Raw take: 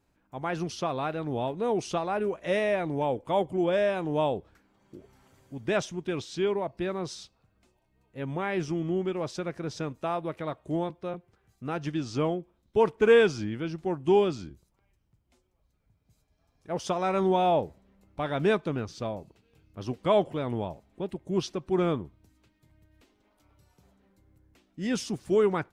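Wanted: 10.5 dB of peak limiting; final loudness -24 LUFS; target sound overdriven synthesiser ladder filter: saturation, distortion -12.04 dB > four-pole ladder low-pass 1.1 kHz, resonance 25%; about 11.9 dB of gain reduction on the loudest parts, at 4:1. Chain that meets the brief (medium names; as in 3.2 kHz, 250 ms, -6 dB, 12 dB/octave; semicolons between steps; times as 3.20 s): compression 4:1, threshold -29 dBFS; peak limiter -30 dBFS; saturation -37.5 dBFS; four-pole ladder low-pass 1.1 kHz, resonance 25%; trim +25 dB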